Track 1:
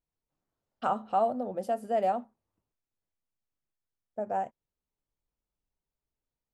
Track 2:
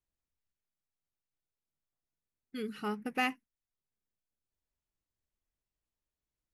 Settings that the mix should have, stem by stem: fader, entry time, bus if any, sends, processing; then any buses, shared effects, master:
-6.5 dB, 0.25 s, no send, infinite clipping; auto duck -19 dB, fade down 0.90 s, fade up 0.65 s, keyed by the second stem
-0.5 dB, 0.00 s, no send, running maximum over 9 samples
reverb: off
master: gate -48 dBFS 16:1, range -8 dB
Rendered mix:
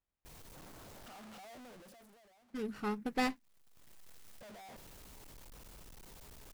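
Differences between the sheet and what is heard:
stem 1 -6.5 dB -> -16.5 dB; master: missing gate -48 dBFS 16:1, range -8 dB

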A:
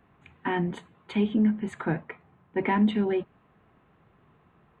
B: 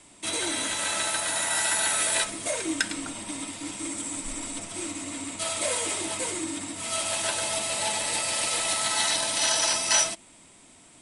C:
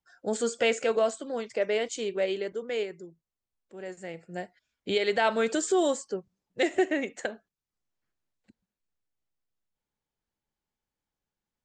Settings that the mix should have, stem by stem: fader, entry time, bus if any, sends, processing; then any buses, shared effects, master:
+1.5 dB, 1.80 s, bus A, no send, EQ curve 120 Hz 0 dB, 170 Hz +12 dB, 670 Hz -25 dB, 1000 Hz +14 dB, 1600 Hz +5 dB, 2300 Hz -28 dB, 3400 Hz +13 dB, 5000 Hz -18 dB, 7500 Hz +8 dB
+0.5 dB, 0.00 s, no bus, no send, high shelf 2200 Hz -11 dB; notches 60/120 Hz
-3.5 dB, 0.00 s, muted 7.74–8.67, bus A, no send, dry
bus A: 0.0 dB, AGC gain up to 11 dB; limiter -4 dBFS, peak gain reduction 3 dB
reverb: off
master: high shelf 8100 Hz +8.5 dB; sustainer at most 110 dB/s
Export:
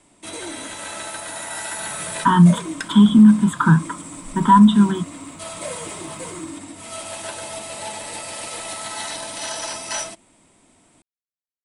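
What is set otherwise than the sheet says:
stem C: muted; master: missing sustainer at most 110 dB/s

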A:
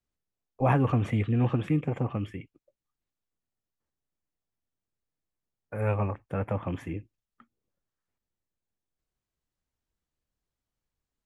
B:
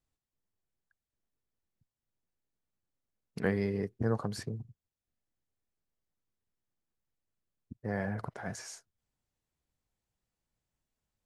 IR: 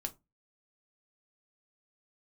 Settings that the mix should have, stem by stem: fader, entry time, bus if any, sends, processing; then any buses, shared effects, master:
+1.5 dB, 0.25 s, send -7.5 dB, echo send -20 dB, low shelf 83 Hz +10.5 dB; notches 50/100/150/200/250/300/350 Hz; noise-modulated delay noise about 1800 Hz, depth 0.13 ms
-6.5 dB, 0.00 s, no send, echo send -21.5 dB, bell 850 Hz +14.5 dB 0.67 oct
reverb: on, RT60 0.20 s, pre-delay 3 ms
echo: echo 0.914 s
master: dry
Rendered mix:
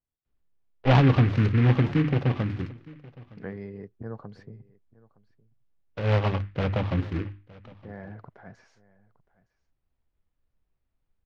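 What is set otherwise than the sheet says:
stem B: missing bell 850 Hz +14.5 dB 0.67 oct; master: extra air absorption 270 m

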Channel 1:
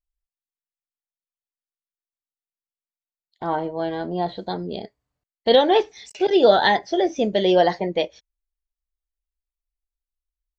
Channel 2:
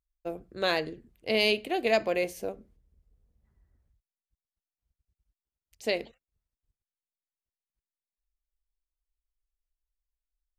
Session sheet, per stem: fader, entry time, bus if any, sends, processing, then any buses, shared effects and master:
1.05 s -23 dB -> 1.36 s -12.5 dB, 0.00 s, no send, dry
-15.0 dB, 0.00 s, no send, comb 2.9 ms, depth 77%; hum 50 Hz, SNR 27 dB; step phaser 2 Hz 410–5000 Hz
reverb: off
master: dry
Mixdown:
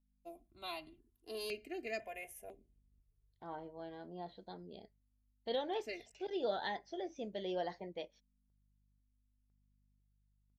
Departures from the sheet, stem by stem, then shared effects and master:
stem 1 -23.0 dB -> -32.5 dB; master: extra bell 11000 Hz +14.5 dB 0.26 oct

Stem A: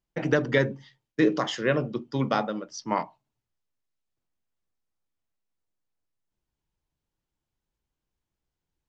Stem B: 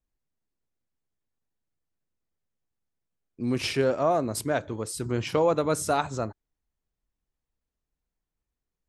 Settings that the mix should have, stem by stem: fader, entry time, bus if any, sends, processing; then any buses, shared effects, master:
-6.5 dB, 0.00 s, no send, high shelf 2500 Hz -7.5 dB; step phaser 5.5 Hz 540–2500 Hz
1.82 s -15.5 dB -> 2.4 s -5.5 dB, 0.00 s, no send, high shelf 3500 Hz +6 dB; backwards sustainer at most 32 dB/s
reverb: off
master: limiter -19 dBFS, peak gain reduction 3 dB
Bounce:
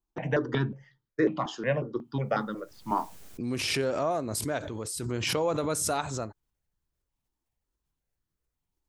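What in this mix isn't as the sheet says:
stem A -6.5 dB -> +1.0 dB; master: missing limiter -19 dBFS, peak gain reduction 3 dB

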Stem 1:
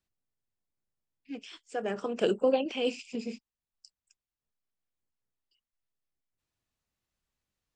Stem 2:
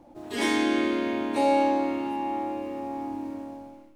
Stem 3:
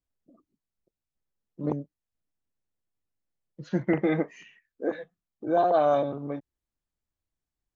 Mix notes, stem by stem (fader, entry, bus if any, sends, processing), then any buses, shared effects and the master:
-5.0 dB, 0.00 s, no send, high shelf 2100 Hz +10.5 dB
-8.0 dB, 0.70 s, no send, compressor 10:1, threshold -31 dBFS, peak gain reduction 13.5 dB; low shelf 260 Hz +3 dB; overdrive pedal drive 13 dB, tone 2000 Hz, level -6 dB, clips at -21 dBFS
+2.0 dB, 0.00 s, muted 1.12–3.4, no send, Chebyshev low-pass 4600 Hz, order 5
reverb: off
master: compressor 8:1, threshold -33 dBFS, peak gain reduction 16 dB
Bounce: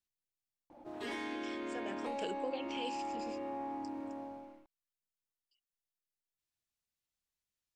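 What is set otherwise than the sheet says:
stem 1 -5.0 dB -> -13.0 dB; stem 3: muted

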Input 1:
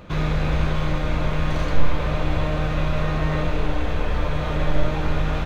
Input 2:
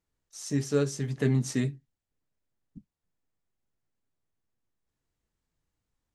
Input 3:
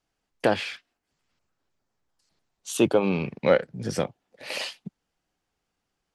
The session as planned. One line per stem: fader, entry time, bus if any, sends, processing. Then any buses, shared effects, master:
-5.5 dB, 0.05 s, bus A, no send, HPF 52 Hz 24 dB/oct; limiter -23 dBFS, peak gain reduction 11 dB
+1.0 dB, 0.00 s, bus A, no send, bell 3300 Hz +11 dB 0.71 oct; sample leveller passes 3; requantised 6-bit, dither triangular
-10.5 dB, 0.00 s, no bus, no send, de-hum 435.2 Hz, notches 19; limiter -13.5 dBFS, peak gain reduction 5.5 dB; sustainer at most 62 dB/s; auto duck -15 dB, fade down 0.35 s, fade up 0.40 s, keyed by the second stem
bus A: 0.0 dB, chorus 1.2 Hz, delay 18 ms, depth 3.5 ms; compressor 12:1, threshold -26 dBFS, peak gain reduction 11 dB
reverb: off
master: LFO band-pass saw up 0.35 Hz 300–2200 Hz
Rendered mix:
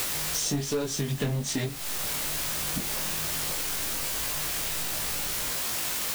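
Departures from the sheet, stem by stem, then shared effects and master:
stem 1: missing HPF 52 Hz 24 dB/oct; stem 2 +1.0 dB -> +12.5 dB; master: missing LFO band-pass saw up 0.35 Hz 300–2200 Hz

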